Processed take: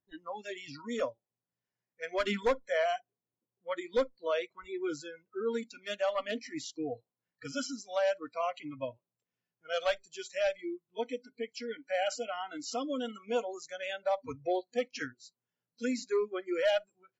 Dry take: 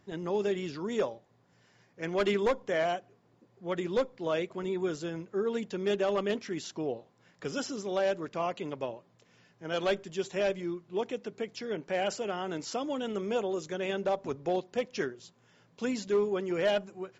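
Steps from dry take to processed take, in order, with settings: spectral noise reduction 29 dB

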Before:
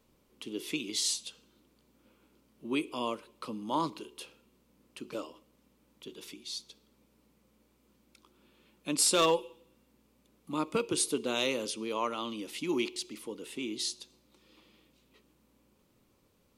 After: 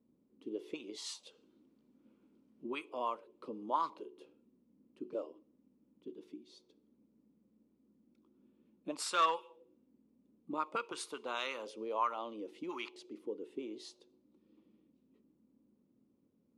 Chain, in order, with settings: auto-wah 240–1300 Hz, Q 2.4, up, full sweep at -26.5 dBFS; high shelf 3300 Hz +7.5 dB; 1.23–3.66 mismatched tape noise reduction encoder only; gain +2 dB

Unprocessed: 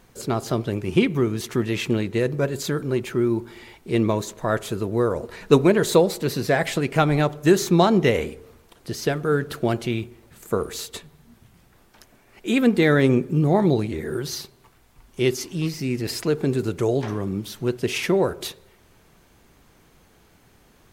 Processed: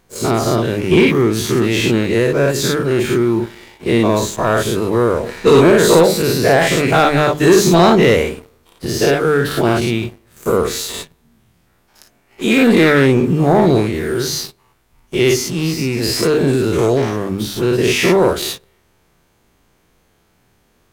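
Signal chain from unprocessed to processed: spectral dilation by 0.12 s; notches 50/100/150/200/250/300 Hz; sample leveller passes 2; gain -3 dB

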